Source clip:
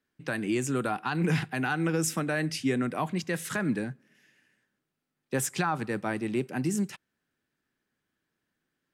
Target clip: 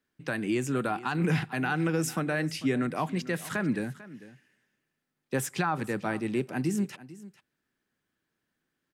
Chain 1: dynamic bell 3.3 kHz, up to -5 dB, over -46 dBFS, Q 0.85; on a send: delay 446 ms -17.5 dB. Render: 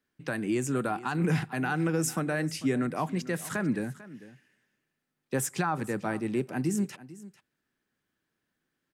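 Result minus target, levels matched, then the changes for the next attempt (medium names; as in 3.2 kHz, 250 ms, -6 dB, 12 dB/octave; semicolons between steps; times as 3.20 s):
8 kHz band +3.5 dB
change: dynamic bell 7.6 kHz, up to -5 dB, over -46 dBFS, Q 0.85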